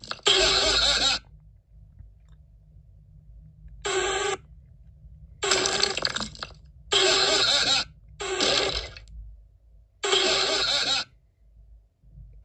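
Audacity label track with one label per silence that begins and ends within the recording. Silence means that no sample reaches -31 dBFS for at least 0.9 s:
1.180000	3.850000	silence
4.350000	5.430000	silence
8.970000	10.030000	silence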